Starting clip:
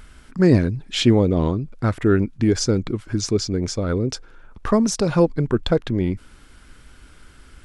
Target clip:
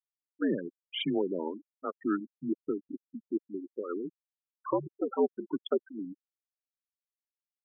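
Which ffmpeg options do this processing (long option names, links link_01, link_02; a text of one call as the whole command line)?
ffmpeg -i in.wav -af "highpass=frequency=380:width_type=q:width=0.5412,highpass=frequency=380:width_type=q:width=1.307,lowpass=frequency=3500:width_type=q:width=0.5176,lowpass=frequency=3500:width_type=q:width=0.7071,lowpass=frequency=3500:width_type=q:width=1.932,afreqshift=-83,afftfilt=real='re*gte(hypot(re,im),0.126)':imag='im*gte(hypot(re,im),0.126)':win_size=1024:overlap=0.75,volume=-7.5dB" out.wav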